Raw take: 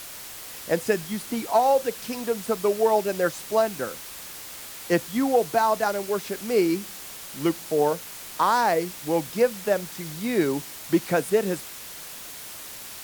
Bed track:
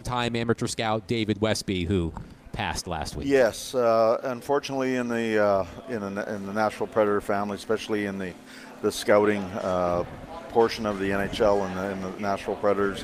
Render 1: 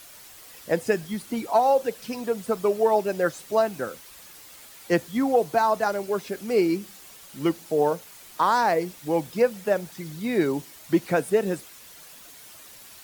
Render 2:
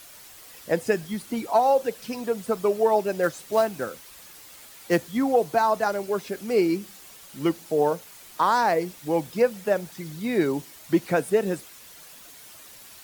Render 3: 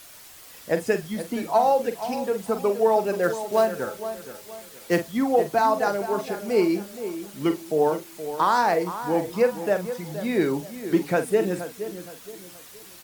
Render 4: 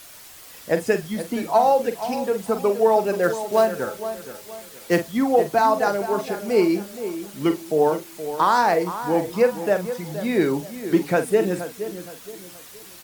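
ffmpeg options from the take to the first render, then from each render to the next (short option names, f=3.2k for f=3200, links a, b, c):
-af "afftdn=nr=9:nf=-40"
-filter_complex "[0:a]asettb=1/sr,asplit=3[a][b][c];[a]atrim=end=3.234[d];[b]atrim=start=3.23:end=5.12,asetpts=PTS-STARTPTS,afade=t=in:d=0.004:c=qsin,afade=t=out:st=1.886:d=0.004:c=qsin,acrusher=bits=5:mode=log:mix=0:aa=0.000001[e];[c]atrim=start=5.116[f];[d][e]acrossfade=d=0.004:c1=hsin:c2=qsin[g];[g][f]acrossfade=d=0.004:c1=qsin:c2=hsin"
-filter_complex "[0:a]asplit=2[a][b];[b]adelay=45,volume=-10dB[c];[a][c]amix=inputs=2:normalize=0,asplit=2[d][e];[e]adelay=471,lowpass=f=2k:p=1,volume=-11dB,asplit=2[f][g];[g]adelay=471,lowpass=f=2k:p=1,volume=0.36,asplit=2[h][i];[i]adelay=471,lowpass=f=2k:p=1,volume=0.36,asplit=2[j][k];[k]adelay=471,lowpass=f=2k:p=1,volume=0.36[l];[d][f][h][j][l]amix=inputs=5:normalize=0"
-af "volume=2.5dB"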